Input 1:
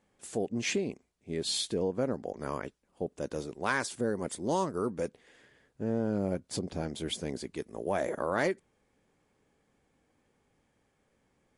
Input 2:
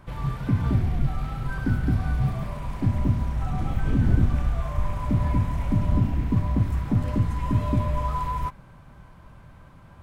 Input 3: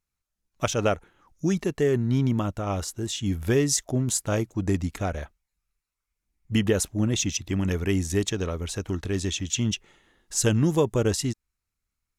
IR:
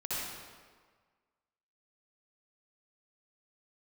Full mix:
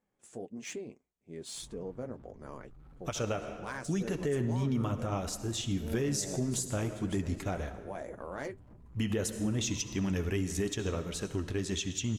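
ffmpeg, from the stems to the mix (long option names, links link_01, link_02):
-filter_complex "[0:a]equalizer=frequency=7000:width=0.33:gain=-3,aexciter=amount=3.6:drive=5.5:freq=6100,adynamicsmooth=sensitivity=4.5:basefreq=5100,volume=-6dB[link_01];[1:a]lowshelf=frequency=340:gain=10.5,acompressor=threshold=-21dB:ratio=3,asoftclip=type=tanh:threshold=-29.5dB,adelay=1550,volume=-18dB[link_02];[2:a]adelay=2450,volume=-1.5dB,asplit=2[link_03][link_04];[link_04]volume=-15dB[link_05];[3:a]atrim=start_sample=2205[link_06];[link_05][link_06]afir=irnorm=-1:irlink=0[link_07];[link_01][link_02][link_03][link_07]amix=inputs=4:normalize=0,flanger=delay=4:depth=5.3:regen=-47:speed=1.7:shape=triangular,alimiter=limit=-23dB:level=0:latency=1:release=95"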